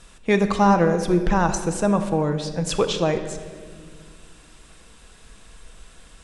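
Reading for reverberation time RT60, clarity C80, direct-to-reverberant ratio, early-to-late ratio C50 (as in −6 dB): 1.9 s, 10.5 dB, 7.0 dB, 9.0 dB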